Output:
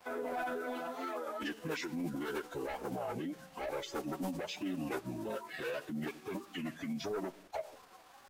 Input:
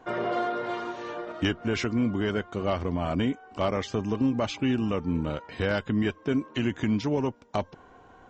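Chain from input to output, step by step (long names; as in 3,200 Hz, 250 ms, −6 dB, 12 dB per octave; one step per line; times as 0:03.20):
spectral dynamics exaggerated over time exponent 1.5
high-pass filter 310 Hz 12 dB per octave
dynamic equaliser 470 Hz, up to +8 dB, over −45 dBFS, Q 0.88
in parallel at −6 dB: sine wavefolder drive 9 dB, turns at −13 dBFS
on the sum: downward compressor 4 to 1, threshold −33 dBFS, peak gain reduction 14 dB
flanger 0.79 Hz, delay 1.3 ms, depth 4.6 ms, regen −10%
on a send at −19.5 dB: convolution reverb RT60 0.95 s, pre-delay 4 ms
on the sum: brickwall limiter −33.5 dBFS, peak gain reduction 10 dB
bit reduction 10 bits
phase-vocoder pitch shift with formants kept −6 semitones
wow of a warped record 33 1/3 rpm, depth 100 cents
level +2.5 dB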